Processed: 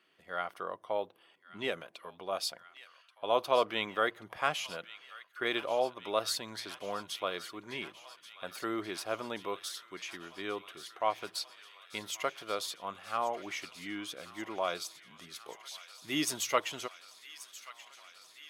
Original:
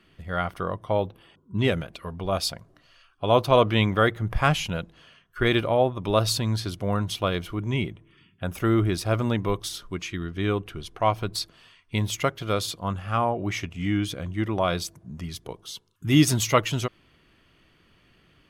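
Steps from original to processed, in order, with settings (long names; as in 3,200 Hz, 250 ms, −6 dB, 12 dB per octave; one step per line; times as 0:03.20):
high-pass filter 440 Hz 12 dB per octave
on a send: delay with a high-pass on its return 1,132 ms, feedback 81%, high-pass 1,500 Hz, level −14.5 dB
on the sum: level −7.5 dB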